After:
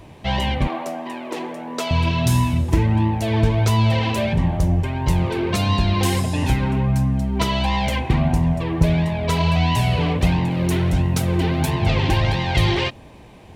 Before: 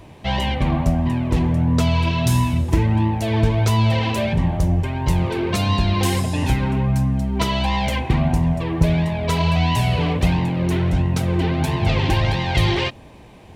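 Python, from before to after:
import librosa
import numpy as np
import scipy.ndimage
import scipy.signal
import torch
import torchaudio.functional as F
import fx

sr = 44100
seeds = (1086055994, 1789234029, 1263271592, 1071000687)

y = fx.highpass(x, sr, hz=330.0, slope=24, at=(0.67, 1.91))
y = fx.high_shelf(y, sr, hz=fx.line((10.5, 4800.0), (11.69, 8200.0)), db=9.0, at=(10.5, 11.69), fade=0.02)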